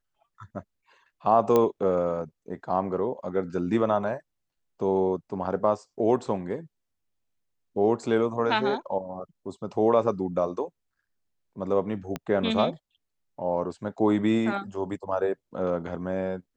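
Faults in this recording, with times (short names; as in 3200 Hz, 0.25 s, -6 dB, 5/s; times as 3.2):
1.56 pop -10 dBFS
12.16 pop -16 dBFS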